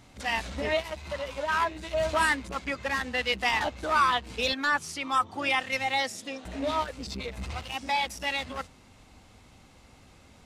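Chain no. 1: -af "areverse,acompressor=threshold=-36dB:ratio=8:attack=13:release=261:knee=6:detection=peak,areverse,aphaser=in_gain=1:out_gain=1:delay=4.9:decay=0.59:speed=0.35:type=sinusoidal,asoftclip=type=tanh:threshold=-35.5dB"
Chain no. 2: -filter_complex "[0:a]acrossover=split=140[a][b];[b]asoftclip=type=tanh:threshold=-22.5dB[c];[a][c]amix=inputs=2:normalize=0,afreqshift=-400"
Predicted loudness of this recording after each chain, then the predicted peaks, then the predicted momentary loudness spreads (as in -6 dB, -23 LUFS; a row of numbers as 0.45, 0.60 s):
-40.5, -31.5 LUFS; -35.5, -17.0 dBFS; 14, 7 LU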